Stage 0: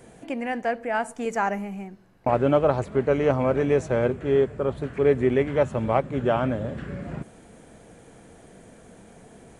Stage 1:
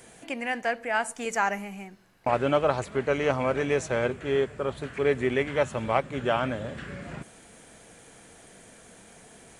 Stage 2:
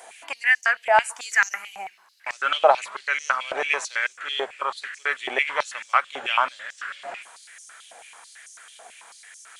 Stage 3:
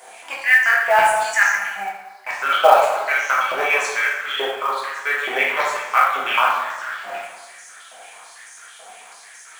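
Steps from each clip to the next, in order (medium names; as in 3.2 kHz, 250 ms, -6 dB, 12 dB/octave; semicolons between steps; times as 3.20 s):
tilt shelf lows -6.5 dB, about 1.1 kHz
step-sequenced high-pass 9.1 Hz 750–5900 Hz; trim +3.5 dB
plate-style reverb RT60 1.2 s, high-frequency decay 0.55×, DRR -5.5 dB; companded quantiser 6-bit; trim -1 dB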